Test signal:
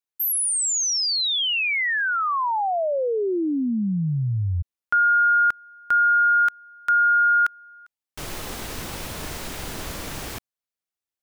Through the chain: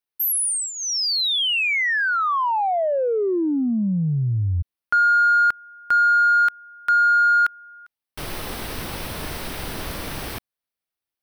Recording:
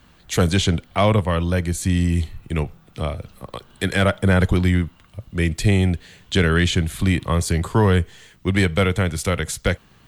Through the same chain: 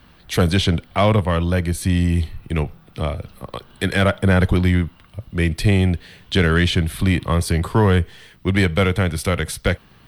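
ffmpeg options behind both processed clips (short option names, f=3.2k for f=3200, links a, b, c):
-filter_complex "[0:a]equalizer=f=7k:w=4.1:g=-14,asplit=2[a][b];[b]asoftclip=type=tanh:threshold=-22.5dB,volume=-8.5dB[c];[a][c]amix=inputs=2:normalize=0"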